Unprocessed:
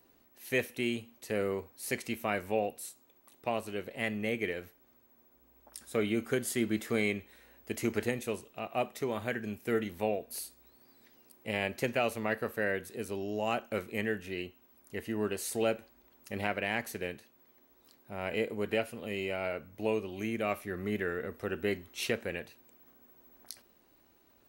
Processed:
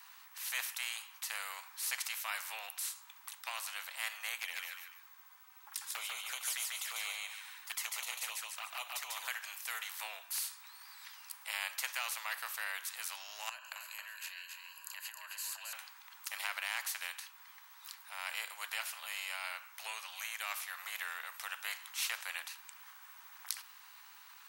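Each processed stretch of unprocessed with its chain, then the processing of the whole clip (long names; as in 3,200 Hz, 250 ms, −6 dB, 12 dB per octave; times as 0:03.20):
0:04.38–0:09.28: flanger swept by the level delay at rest 4.2 ms, full sweep at −29.5 dBFS + repeating echo 145 ms, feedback 21%, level −4 dB
0:13.49–0:15.73: EQ curve with evenly spaced ripples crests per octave 1.4, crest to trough 16 dB + downward compressor 12 to 1, threshold −43 dBFS + single-tap delay 270 ms −8 dB
whole clip: Butterworth high-pass 940 Hz 48 dB per octave; every bin compressed towards the loudest bin 2 to 1; level +6.5 dB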